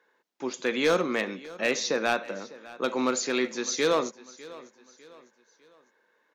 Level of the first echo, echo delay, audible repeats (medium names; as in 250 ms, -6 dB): -19.5 dB, 602 ms, 3